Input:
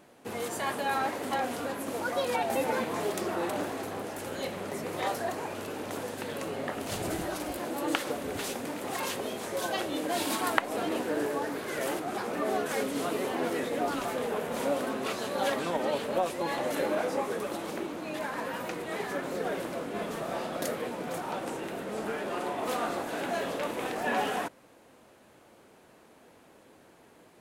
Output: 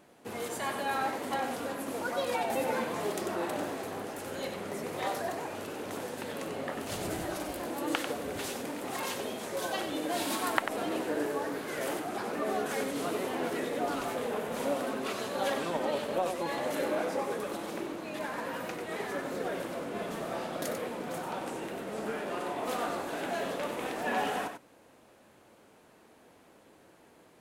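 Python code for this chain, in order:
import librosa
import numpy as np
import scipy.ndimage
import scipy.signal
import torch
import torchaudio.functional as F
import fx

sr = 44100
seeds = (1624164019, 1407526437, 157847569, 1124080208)

y = x + 10.0 ** (-7.5 / 20.0) * np.pad(x, (int(94 * sr / 1000.0), 0))[:len(x)]
y = F.gain(torch.from_numpy(y), -2.5).numpy()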